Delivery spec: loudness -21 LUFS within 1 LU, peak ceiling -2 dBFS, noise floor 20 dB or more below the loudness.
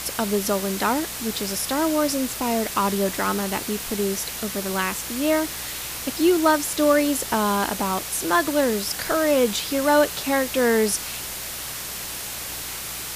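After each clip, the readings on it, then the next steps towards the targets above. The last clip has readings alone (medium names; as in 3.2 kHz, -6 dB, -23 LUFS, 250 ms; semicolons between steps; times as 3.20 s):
hum 60 Hz; highest harmonic 180 Hz; hum level -45 dBFS; noise floor -32 dBFS; noise floor target -43 dBFS; loudness -23.0 LUFS; peak level -5.5 dBFS; loudness target -21.0 LUFS
-> de-hum 60 Hz, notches 3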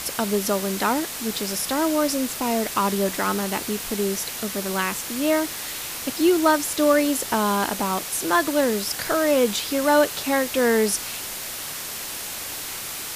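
hum not found; noise floor -33 dBFS; noise floor target -43 dBFS
-> noise print and reduce 10 dB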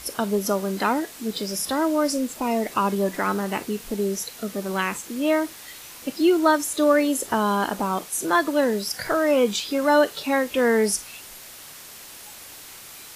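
noise floor -42 dBFS; noise floor target -43 dBFS
-> noise print and reduce 6 dB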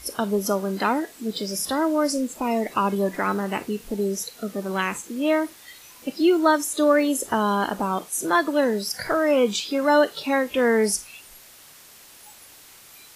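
noise floor -48 dBFS; loudness -23.0 LUFS; peak level -6.0 dBFS; loudness target -21.0 LUFS
-> trim +2 dB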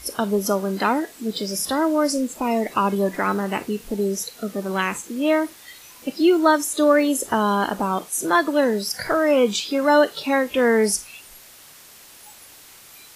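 loudness -21.0 LUFS; peak level -4.0 dBFS; noise floor -46 dBFS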